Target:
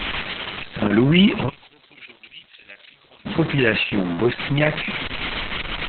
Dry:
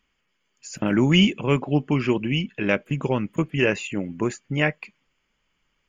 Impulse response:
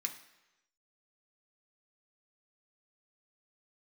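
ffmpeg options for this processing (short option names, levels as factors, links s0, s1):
-filter_complex "[0:a]aeval=exprs='val(0)+0.5*0.0708*sgn(val(0))':c=same,asplit=3[s0][s1][s2];[s0]afade=t=out:st=1.48:d=0.02[s3];[s1]bandpass=f=5800:t=q:w=3:csg=0,afade=t=in:st=1.48:d=0.02,afade=t=out:st=3.25:d=0.02[s4];[s2]afade=t=in:st=3.25:d=0.02[s5];[s3][s4][s5]amix=inputs=3:normalize=0,volume=1.41" -ar 48000 -c:a libopus -b:a 6k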